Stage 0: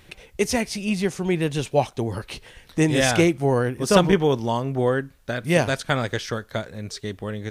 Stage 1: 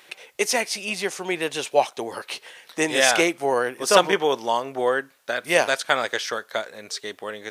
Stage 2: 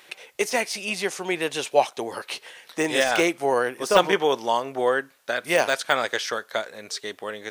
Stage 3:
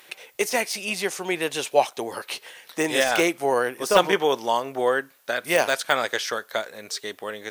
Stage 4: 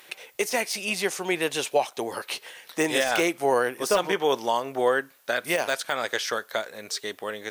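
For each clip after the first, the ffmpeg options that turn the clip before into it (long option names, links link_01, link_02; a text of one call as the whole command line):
ffmpeg -i in.wav -af "highpass=550,volume=4dB" out.wav
ffmpeg -i in.wav -af "deesser=0.5" out.wav
ffmpeg -i in.wav -af "equalizer=frequency=16000:width=0.83:gain=12" out.wav
ffmpeg -i in.wav -af "alimiter=limit=-11dB:level=0:latency=1:release=231" out.wav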